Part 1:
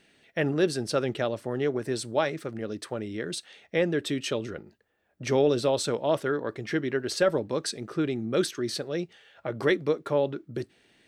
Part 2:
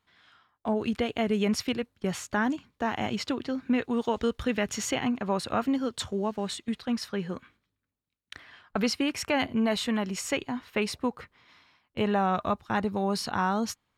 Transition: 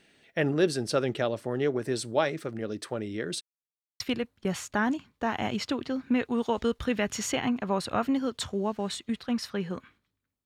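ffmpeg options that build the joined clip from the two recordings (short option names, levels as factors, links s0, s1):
-filter_complex "[0:a]apad=whole_dur=10.45,atrim=end=10.45,asplit=2[s0][s1];[s0]atrim=end=3.41,asetpts=PTS-STARTPTS,afade=t=out:st=3.406:d=0.004:c=hsin[s2];[s1]atrim=start=3.41:end=4,asetpts=PTS-STARTPTS,volume=0[s3];[1:a]atrim=start=1.59:end=8.04,asetpts=PTS-STARTPTS,afade=t=in:d=0.004:c=hsin[s4];[s2][s3][s4]concat=n=3:v=0:a=1"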